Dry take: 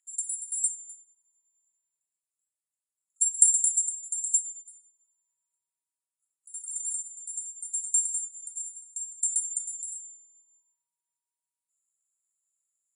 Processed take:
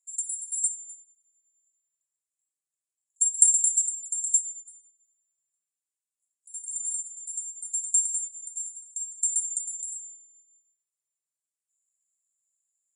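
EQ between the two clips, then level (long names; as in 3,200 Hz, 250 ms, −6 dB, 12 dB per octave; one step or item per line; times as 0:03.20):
resonant band-pass 7,000 Hz, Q 2.2
first difference
+2.5 dB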